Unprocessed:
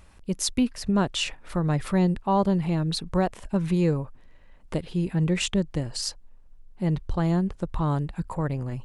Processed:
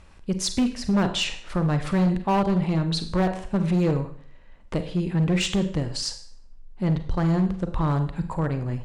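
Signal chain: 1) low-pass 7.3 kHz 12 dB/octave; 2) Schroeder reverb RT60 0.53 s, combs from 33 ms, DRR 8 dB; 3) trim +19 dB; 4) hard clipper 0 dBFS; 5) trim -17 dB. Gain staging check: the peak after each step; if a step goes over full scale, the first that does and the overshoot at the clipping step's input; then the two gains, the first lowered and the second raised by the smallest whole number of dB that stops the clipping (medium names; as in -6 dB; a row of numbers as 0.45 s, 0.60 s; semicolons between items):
-12.0 dBFS, -10.0 dBFS, +9.0 dBFS, 0.0 dBFS, -17.0 dBFS; step 3, 9.0 dB; step 3 +10 dB, step 5 -8 dB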